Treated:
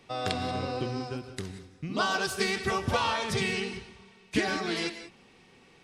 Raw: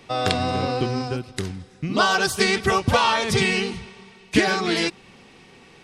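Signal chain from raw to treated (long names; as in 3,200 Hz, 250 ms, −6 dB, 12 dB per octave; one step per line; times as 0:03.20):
reverb whose tail is shaped and stops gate 210 ms rising, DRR 10 dB
level −9 dB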